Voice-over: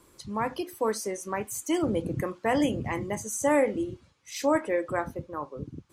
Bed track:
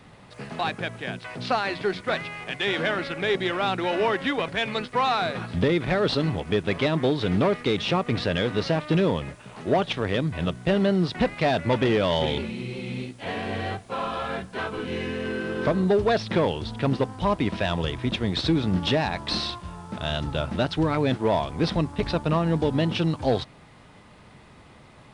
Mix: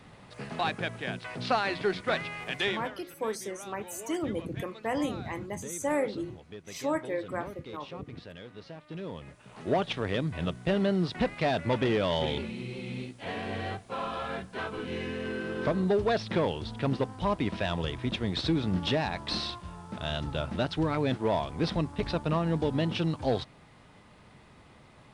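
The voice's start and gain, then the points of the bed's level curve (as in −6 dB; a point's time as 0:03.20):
2.40 s, −5.5 dB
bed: 0:02.66 −2.5 dB
0:02.93 −21 dB
0:08.83 −21 dB
0:09.64 −5 dB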